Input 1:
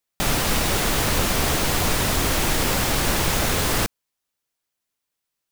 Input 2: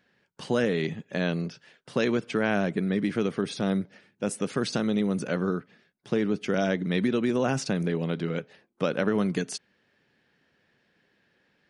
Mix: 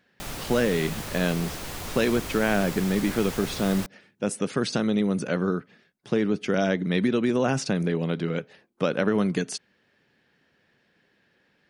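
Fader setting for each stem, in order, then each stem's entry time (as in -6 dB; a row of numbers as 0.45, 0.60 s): -14.0, +2.0 dB; 0.00, 0.00 s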